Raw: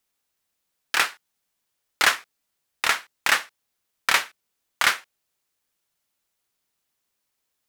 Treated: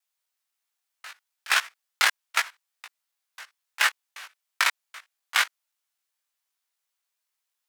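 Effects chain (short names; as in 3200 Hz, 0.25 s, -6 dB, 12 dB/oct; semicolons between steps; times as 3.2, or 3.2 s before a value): slices in reverse order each 0.26 s, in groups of 3; HPF 790 Hz 12 dB/oct; level quantiser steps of 21 dB; chorus 0.54 Hz, delay 17.5 ms, depth 2 ms; gain +4.5 dB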